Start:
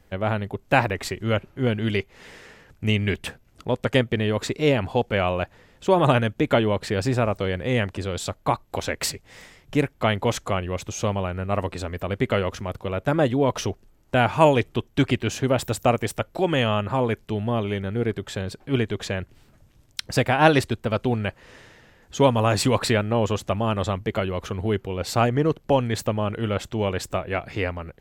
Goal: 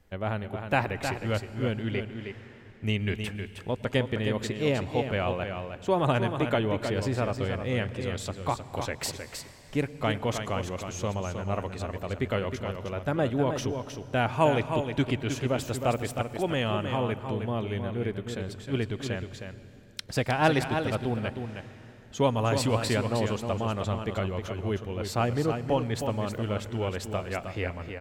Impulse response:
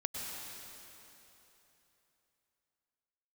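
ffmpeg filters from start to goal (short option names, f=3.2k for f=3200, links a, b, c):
-filter_complex "[0:a]asettb=1/sr,asplit=3[a][b][c];[a]atrim=end=1.824[d];[b]atrim=start=1.82:end=2.84,asetpts=PTS-STARTPTS,afade=t=in:d=0.004:c=qsin,afade=t=out:st=1.016:d=0.004:c=qsin,bass=f=250:g=-2,treble=f=4k:g=-11[e];[c]atrim=start=2.836[f];[d][e]acrossfade=d=0.004:c1=hsin:c2=qsin[g];[g][f]acrossfade=d=0.004:c1=qsin:c2=hsin,aecho=1:1:313:0.447,asplit=2[h][i];[1:a]atrim=start_sample=2205,lowshelf=f=150:g=10[j];[i][j]afir=irnorm=-1:irlink=0,volume=-15dB[k];[h][k]amix=inputs=2:normalize=0,volume=-8dB"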